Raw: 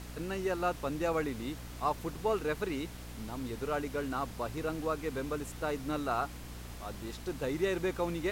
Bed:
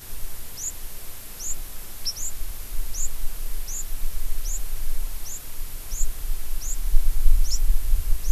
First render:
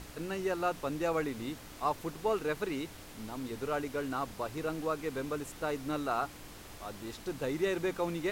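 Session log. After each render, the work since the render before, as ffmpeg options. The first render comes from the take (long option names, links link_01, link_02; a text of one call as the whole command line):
ffmpeg -i in.wav -af "bandreject=frequency=60:width_type=h:width=4,bandreject=frequency=120:width_type=h:width=4,bandreject=frequency=180:width_type=h:width=4,bandreject=frequency=240:width_type=h:width=4" out.wav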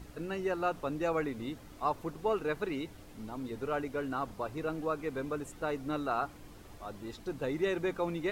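ffmpeg -i in.wav -af "afftdn=noise_reduction=9:noise_floor=-49" out.wav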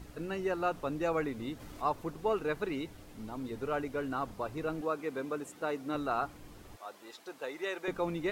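ffmpeg -i in.wav -filter_complex "[0:a]asplit=3[link_01][link_02][link_03];[link_01]afade=type=out:start_time=1.59:duration=0.02[link_04];[link_02]acompressor=mode=upward:threshold=-39dB:ratio=2.5:attack=3.2:release=140:knee=2.83:detection=peak,afade=type=in:start_time=1.59:duration=0.02,afade=type=out:start_time=1.99:duration=0.02[link_05];[link_03]afade=type=in:start_time=1.99:duration=0.02[link_06];[link_04][link_05][link_06]amix=inputs=3:normalize=0,asettb=1/sr,asplit=3[link_07][link_08][link_09];[link_07]atrim=end=4.814[link_10];[link_08]atrim=start=4.81:end=5.95,asetpts=PTS-STARTPTS,afade=type=in:duration=0.004:curve=qsin,afade=type=out:start_time=1.136:duration=0.004:curve=qsin,highpass=190[link_11];[link_09]atrim=start=5.946[link_12];[link_10][link_11]acrossfade=duration=0.004:curve1=hsin:curve2=qsin[link_13];[link_13][link_12]acrossfade=duration=0.004:curve1=qsin:curve2=hsin,asettb=1/sr,asplit=3[link_14][link_15][link_16];[link_14]atrim=end=6.764[link_17];[link_15]atrim=start=6.76:end=7.88,asetpts=PTS-STARTPTS,afade=type=in:duration=0.004:curve=qsin,afade=type=out:start_time=1.116:duration=0.004:curve=qsin,highpass=570[link_18];[link_16]atrim=start=7.876[link_19];[link_17][link_18]acrossfade=duration=0.004:curve1=hsin:curve2=qsin[link_20];[link_20][link_19]acrossfade=duration=0.004:curve1=qsin:curve2=hsin" out.wav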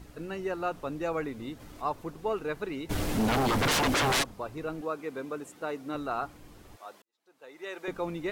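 ffmpeg -i in.wav -filter_complex "[0:a]asplit=3[link_01][link_02][link_03];[link_01]afade=type=out:start_time=2.89:duration=0.02[link_04];[link_02]aeval=exprs='0.075*sin(PI/2*8.91*val(0)/0.075)':channel_layout=same,afade=type=in:start_time=2.89:duration=0.02,afade=type=out:start_time=4.22:duration=0.02[link_05];[link_03]afade=type=in:start_time=4.22:duration=0.02[link_06];[link_04][link_05][link_06]amix=inputs=3:normalize=0,asplit=2[link_07][link_08];[link_07]atrim=end=7.02,asetpts=PTS-STARTPTS,afade=type=out:start_time=7.016:duration=0.004:curve=hsin[link_09];[link_08]atrim=start=7.02,asetpts=PTS-STARTPTS,afade=type=in:duration=0.79:curve=qua[link_10];[link_09][link_10]concat=n=2:v=0:a=1" out.wav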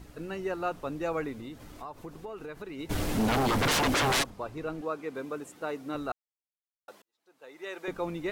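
ffmpeg -i in.wav -filter_complex "[0:a]asplit=3[link_01][link_02][link_03];[link_01]afade=type=out:start_time=1.35:duration=0.02[link_04];[link_02]acompressor=threshold=-37dB:ratio=6:attack=3.2:release=140:knee=1:detection=peak,afade=type=in:start_time=1.35:duration=0.02,afade=type=out:start_time=2.78:duration=0.02[link_05];[link_03]afade=type=in:start_time=2.78:duration=0.02[link_06];[link_04][link_05][link_06]amix=inputs=3:normalize=0,asettb=1/sr,asplit=3[link_07][link_08][link_09];[link_07]atrim=end=4.304[link_10];[link_08]atrim=start=4.3:end=5.15,asetpts=PTS-STARTPTS,afade=type=in:duration=0.004:curve=qsin,afade=type=out:start_time=0.846:duration=0.004:curve=qsin,highshelf=frequency=9800:gain=-7[link_11];[link_09]atrim=start=5.146[link_12];[link_10][link_11]acrossfade=duration=0.004:curve1=hsin:curve2=qsin[link_13];[link_13][link_12]acrossfade=duration=0.004:curve1=qsin:curve2=hsin,asplit=3[link_14][link_15][link_16];[link_14]atrim=end=6.12,asetpts=PTS-STARTPTS,afade=type=out:start_time=6.116:duration=0.004:curve=hsin[link_17];[link_15]atrim=start=6.12:end=6.88,asetpts=PTS-STARTPTS,volume=0[link_18];[link_16]atrim=start=6.88,asetpts=PTS-STARTPTS,afade=type=in:duration=0.004:curve=hsin[link_19];[link_17][link_18][link_19]concat=n=3:v=0:a=1" out.wav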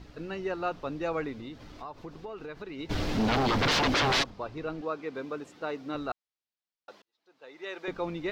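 ffmpeg -i in.wav -af "highshelf=frequency=6900:width_type=q:width=1.5:gain=-13.5" out.wav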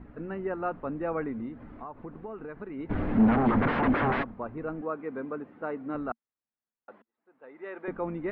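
ffmpeg -i in.wav -af "lowpass=frequency=1900:width=0.5412,lowpass=frequency=1900:width=1.3066,equalizer=frequency=230:width_type=o:width=0.37:gain=9.5" out.wav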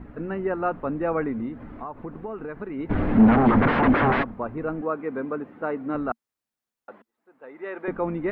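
ffmpeg -i in.wav -af "volume=6dB" out.wav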